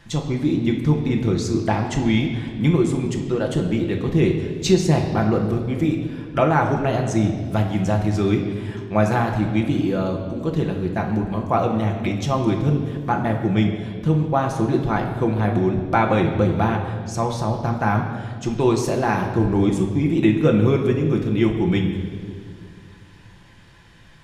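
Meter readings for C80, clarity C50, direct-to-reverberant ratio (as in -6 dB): 7.5 dB, 6.0 dB, 1.0 dB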